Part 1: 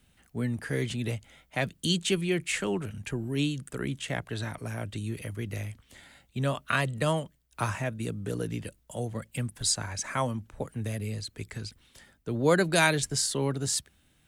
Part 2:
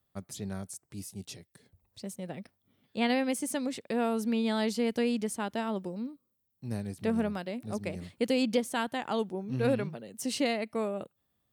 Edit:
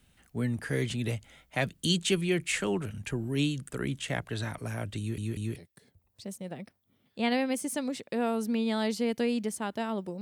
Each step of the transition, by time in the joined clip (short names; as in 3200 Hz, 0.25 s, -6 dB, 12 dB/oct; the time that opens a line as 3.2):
part 1
4.99 stutter in place 0.19 s, 3 plays
5.56 switch to part 2 from 1.34 s